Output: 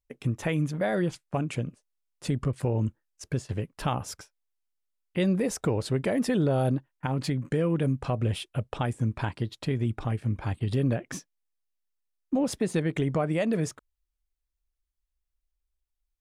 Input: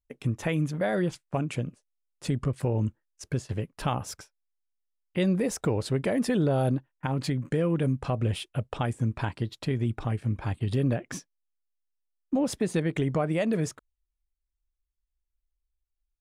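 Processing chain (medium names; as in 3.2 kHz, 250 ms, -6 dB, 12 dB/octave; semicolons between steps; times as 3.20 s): wow and flutter 24 cents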